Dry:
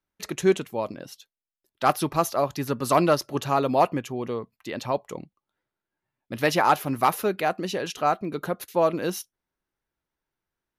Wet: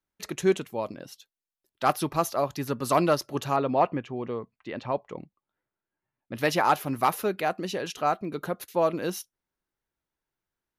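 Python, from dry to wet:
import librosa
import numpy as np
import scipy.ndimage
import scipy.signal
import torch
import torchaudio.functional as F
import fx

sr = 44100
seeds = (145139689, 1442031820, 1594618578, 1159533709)

y = fx.lowpass(x, sr, hz=2900.0, slope=12, at=(3.56, 6.35))
y = F.gain(torch.from_numpy(y), -2.5).numpy()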